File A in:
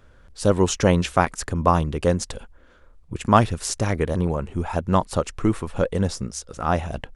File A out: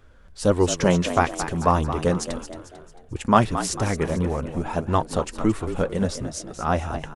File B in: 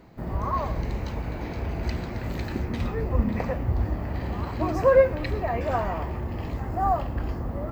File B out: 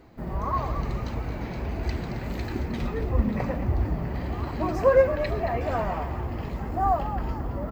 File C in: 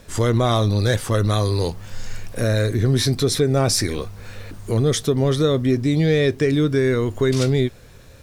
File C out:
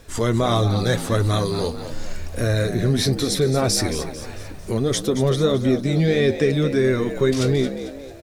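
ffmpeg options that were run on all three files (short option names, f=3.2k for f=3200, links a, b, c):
-filter_complex "[0:a]flanger=delay=2.5:depth=2.9:regen=-45:speed=1.6:shape=sinusoidal,asplit=6[a][b][c][d][e][f];[b]adelay=223,afreqshift=68,volume=-11dB[g];[c]adelay=446,afreqshift=136,volume=-18.1dB[h];[d]adelay=669,afreqshift=204,volume=-25.3dB[i];[e]adelay=892,afreqshift=272,volume=-32.4dB[j];[f]adelay=1115,afreqshift=340,volume=-39.5dB[k];[a][g][h][i][j][k]amix=inputs=6:normalize=0,volume=3dB"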